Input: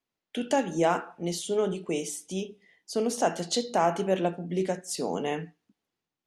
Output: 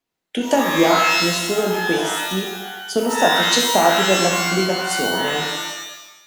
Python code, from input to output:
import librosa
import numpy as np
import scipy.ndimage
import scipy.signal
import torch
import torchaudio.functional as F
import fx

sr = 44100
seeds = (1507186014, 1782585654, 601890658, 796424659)

y = fx.transient(x, sr, attack_db=5, sustain_db=1)
y = fx.rev_shimmer(y, sr, seeds[0], rt60_s=1.0, semitones=12, shimmer_db=-2, drr_db=1.5)
y = F.gain(torch.from_numpy(y), 4.0).numpy()